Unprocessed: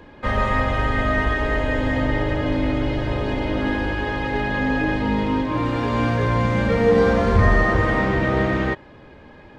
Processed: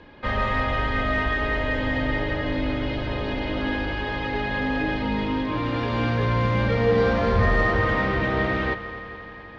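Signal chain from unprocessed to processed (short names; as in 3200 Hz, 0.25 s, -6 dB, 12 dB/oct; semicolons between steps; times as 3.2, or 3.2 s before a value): LPF 4800 Hz 24 dB/oct; high shelf 2500 Hz +7.5 dB; in parallel at -5.5 dB: soft clip -15 dBFS, distortion -13 dB; on the sum: multi-head echo 86 ms, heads second and third, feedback 71%, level -16.5 dB; gain -7.5 dB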